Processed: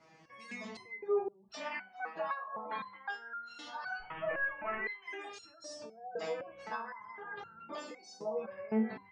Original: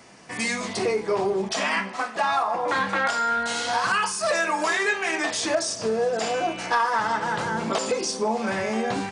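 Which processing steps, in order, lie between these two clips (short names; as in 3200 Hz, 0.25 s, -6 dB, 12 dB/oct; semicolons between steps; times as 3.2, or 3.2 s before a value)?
3.99–4.86 delta modulation 16 kbps, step -27.5 dBFS; 6.39–6.93 low shelf 300 Hz +6 dB; spectral gate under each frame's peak -25 dB strong; air absorption 130 m; stepped resonator 3.9 Hz 160–1400 Hz; gain +1 dB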